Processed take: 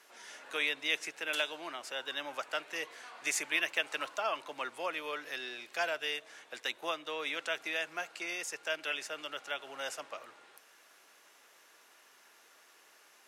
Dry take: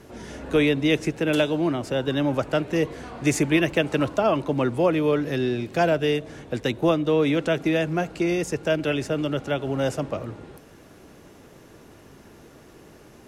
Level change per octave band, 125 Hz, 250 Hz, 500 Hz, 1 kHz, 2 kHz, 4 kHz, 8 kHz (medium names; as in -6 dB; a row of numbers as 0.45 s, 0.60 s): under -35 dB, -28.0 dB, -18.5 dB, -9.5 dB, -4.5 dB, -4.0 dB, -4.0 dB